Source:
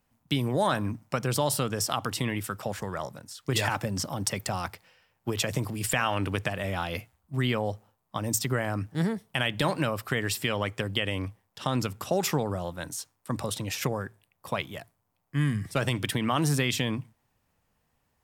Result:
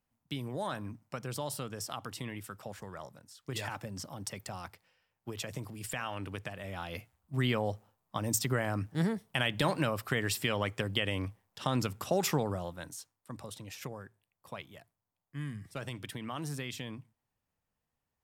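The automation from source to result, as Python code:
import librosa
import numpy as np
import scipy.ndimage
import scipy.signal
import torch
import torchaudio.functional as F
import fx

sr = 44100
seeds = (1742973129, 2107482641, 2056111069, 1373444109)

y = fx.gain(x, sr, db=fx.line((6.62, -11.0), (7.39, -3.0), (12.46, -3.0), (13.31, -13.0)))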